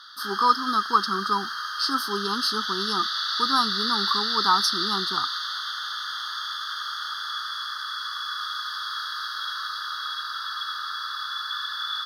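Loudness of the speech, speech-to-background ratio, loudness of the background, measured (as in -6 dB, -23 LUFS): -26.0 LUFS, 2.0 dB, -28.0 LUFS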